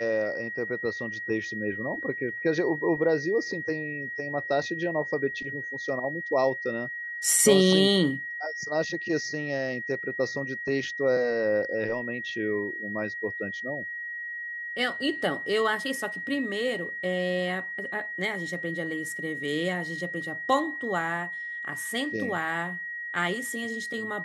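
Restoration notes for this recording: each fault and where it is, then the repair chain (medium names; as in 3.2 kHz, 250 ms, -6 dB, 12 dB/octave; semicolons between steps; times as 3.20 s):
whine 1.9 kHz -33 dBFS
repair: band-stop 1.9 kHz, Q 30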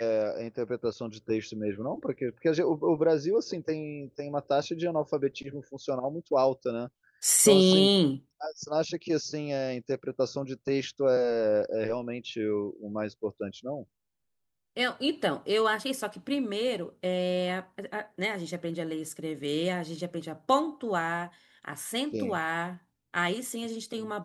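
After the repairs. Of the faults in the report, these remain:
nothing left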